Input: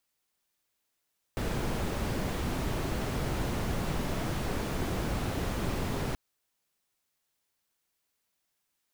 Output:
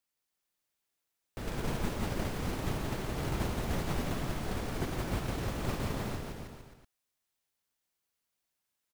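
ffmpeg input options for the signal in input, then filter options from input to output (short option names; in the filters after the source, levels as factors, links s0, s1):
-f lavfi -i "anoisesrc=c=brown:a=0.132:d=4.78:r=44100:seed=1"
-af "agate=range=0.447:threshold=0.0316:ratio=16:detection=peak,aecho=1:1:170|323|460.7|584.6|696.2:0.631|0.398|0.251|0.158|0.1"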